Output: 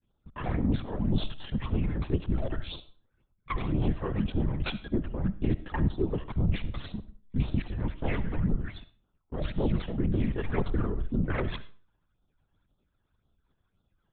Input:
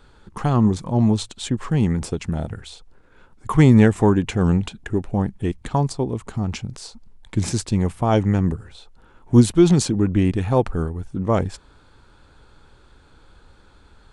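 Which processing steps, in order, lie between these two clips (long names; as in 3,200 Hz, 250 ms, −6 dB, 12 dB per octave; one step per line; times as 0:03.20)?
phase distortion by the signal itself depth 0.72 ms
brickwall limiter −12 dBFS, peak gain reduction 10 dB
reversed playback
downward compressor 8 to 1, threshold −29 dBFS, peak gain reduction 12.5 dB
reversed playback
noise gate −41 dBFS, range −30 dB
all-pass phaser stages 12, 1.9 Hz, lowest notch 220–2,100 Hz
granular cloud 100 ms, grains 20 per second, spray 15 ms, pitch spread up and down by 0 semitones
linear-prediction vocoder at 8 kHz whisper
on a send: convolution reverb RT60 0.40 s, pre-delay 30 ms, DRR 14.5 dB
on the sum: level +7 dB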